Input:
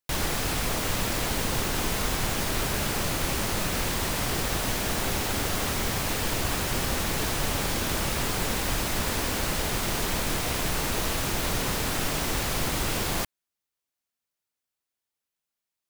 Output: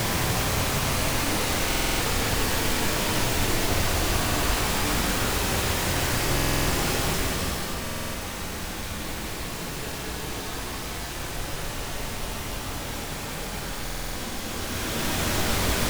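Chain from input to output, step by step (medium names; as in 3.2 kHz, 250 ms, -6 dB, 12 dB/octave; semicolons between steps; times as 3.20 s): square tremolo 0.51 Hz, depth 60%, duty 50%; Paulstretch 7.8×, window 0.25 s, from 5.92 s; buffer glitch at 1.67/6.35/7.82/13.83 s, samples 2048, times 6; loudspeaker Doppler distortion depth 0.23 ms; trim +3.5 dB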